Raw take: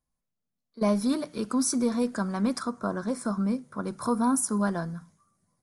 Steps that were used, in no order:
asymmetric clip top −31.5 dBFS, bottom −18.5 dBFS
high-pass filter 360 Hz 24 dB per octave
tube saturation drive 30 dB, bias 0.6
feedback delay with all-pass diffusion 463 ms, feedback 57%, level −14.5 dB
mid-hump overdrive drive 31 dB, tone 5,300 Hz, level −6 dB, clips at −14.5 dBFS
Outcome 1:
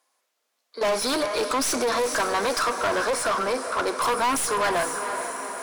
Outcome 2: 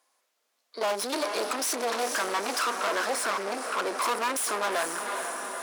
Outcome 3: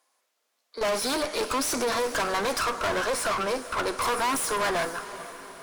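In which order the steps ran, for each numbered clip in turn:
high-pass filter, then asymmetric clip, then feedback delay with all-pass diffusion, then tube saturation, then mid-hump overdrive
tube saturation, then feedback delay with all-pass diffusion, then mid-hump overdrive, then asymmetric clip, then high-pass filter
high-pass filter, then tube saturation, then mid-hump overdrive, then asymmetric clip, then feedback delay with all-pass diffusion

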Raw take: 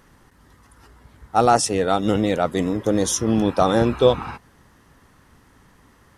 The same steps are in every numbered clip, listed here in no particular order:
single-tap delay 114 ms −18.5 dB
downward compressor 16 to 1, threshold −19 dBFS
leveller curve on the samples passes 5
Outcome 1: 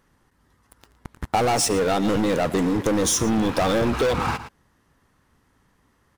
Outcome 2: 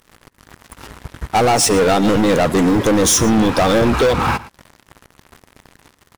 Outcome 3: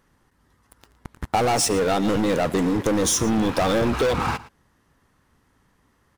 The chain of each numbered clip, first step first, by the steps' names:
leveller curve on the samples, then single-tap delay, then downward compressor
downward compressor, then leveller curve on the samples, then single-tap delay
leveller curve on the samples, then downward compressor, then single-tap delay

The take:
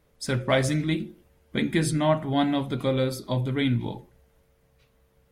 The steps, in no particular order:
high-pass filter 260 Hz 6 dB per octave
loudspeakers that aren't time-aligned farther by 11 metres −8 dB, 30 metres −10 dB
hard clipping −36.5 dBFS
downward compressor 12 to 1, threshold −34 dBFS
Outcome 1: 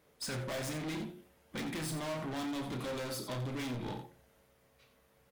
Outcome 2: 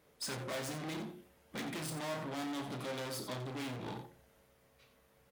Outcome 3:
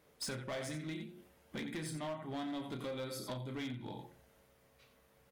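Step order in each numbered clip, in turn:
high-pass filter, then hard clipping, then loudspeakers that aren't time-aligned, then downward compressor
hard clipping, then loudspeakers that aren't time-aligned, then downward compressor, then high-pass filter
loudspeakers that aren't time-aligned, then downward compressor, then high-pass filter, then hard clipping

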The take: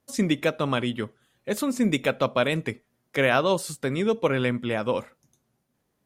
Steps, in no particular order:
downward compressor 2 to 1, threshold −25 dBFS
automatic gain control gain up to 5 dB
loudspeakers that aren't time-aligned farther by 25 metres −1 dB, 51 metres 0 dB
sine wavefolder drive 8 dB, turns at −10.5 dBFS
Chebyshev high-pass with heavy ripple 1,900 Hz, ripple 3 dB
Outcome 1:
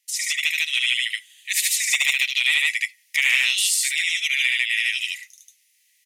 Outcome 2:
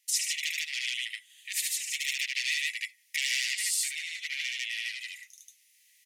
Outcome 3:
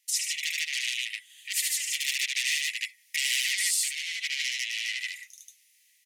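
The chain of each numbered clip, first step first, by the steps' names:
Chebyshev high-pass with heavy ripple, then sine wavefolder, then loudspeakers that aren't time-aligned, then downward compressor, then automatic gain control
sine wavefolder, then loudspeakers that aren't time-aligned, then automatic gain control, then downward compressor, then Chebyshev high-pass with heavy ripple
automatic gain control, then sine wavefolder, then loudspeakers that aren't time-aligned, then downward compressor, then Chebyshev high-pass with heavy ripple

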